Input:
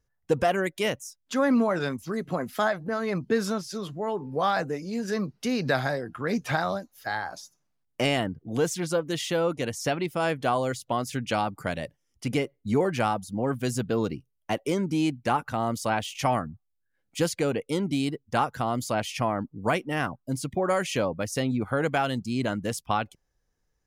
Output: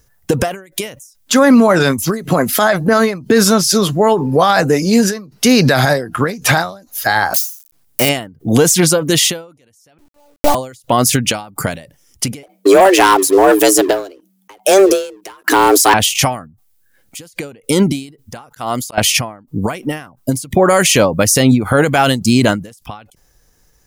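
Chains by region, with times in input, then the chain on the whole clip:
0:07.34–0:08.09: spike at every zero crossing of −24 dBFS + hum removal 155.6 Hz, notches 2
0:09.98–0:10.55: Chebyshev low-pass filter 950 Hz, order 4 + one-pitch LPC vocoder at 8 kHz 290 Hz + centre clipping without the shift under −33 dBFS
0:12.43–0:15.94: frequency shifter +190 Hz + leveller curve on the samples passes 2 + downward compressor 2 to 1, threshold −28 dBFS
0:18.49–0:18.98: de-essing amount 35% + low-shelf EQ 410 Hz −8 dB + volume swells 437 ms
whole clip: high-shelf EQ 6,100 Hz +12 dB; boost into a limiter +21 dB; every ending faded ahead of time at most 130 dB per second; level −1 dB

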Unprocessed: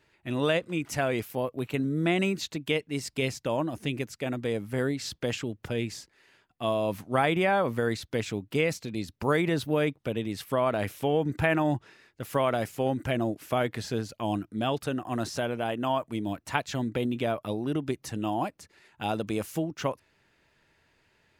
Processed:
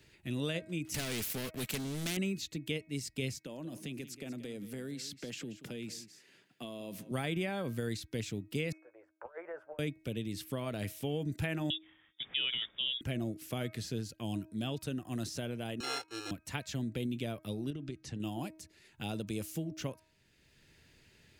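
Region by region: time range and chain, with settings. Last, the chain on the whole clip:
0:00.94–0:02.17: comb filter 4.6 ms, depth 39% + leveller curve on the samples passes 3 + every bin compressed towards the loudest bin 2 to 1
0:03.38–0:07.11: high-pass filter 150 Hz 24 dB per octave + downward compressor 3 to 1, threshold −34 dBFS + single-tap delay 181 ms −15 dB
0:08.72–0:09.79: elliptic band-pass filter 540–1,500 Hz, stop band 50 dB + compressor whose output falls as the input rises −36 dBFS, ratio −0.5 + double-tracking delay 12 ms −11.5 dB
0:11.70–0:13.01: voice inversion scrambler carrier 3,600 Hz + high-pass filter 120 Hz 6 dB per octave
0:15.80–0:16.31: samples sorted by size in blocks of 32 samples + three-way crossover with the lows and the highs turned down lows −24 dB, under 340 Hz, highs −21 dB, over 8,000 Hz + comb filter 2.4 ms, depth 98%
0:17.70–0:18.20: high-frequency loss of the air 97 metres + downward compressor 4 to 1, threshold −31 dBFS
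whole clip: parametric band 960 Hz −14.5 dB 2.2 octaves; hum removal 316.4 Hz, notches 8; multiband upward and downward compressor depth 40%; level −3 dB

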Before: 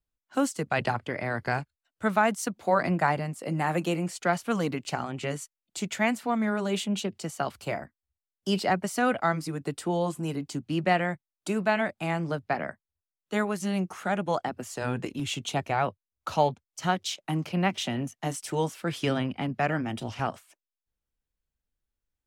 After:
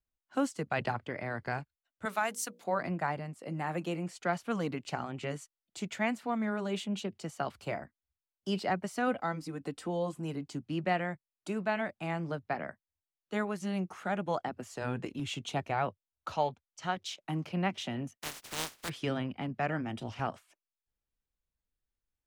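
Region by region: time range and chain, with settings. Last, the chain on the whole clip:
0:02.05–0:02.64: RIAA equalisation recording + mains-hum notches 60/120/180/240/300/360/420/480/540/600 Hz
0:09.07–0:10.13: dynamic equaliser 1,700 Hz, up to −4 dB, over −38 dBFS, Q 0.88 + comb filter 3.9 ms, depth 34% + upward compression, threshold −34 dBFS
0:16.32–0:16.97: low-pass filter 8,600 Hz + parametric band 190 Hz −5.5 dB 2.5 octaves
0:18.17–0:18.88: compressing power law on the bin magnitudes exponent 0.14 + downward expander −42 dBFS
whole clip: speech leveller within 4 dB 2 s; high-shelf EQ 7,000 Hz −9 dB; level −6.5 dB

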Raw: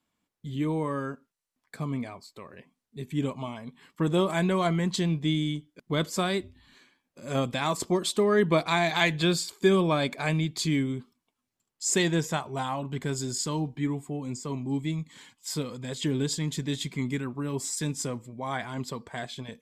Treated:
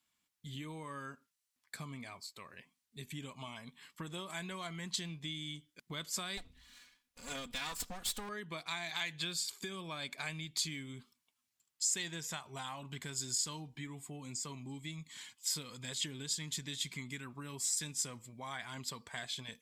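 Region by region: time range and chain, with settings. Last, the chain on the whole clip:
0:06.37–0:08.29: lower of the sound and its delayed copy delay 4.1 ms + low-shelf EQ 85 Hz +10.5 dB
whole clip: low-shelf EQ 220 Hz −4.5 dB; downward compressor 5 to 1, threshold −34 dBFS; guitar amp tone stack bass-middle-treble 5-5-5; level +9 dB

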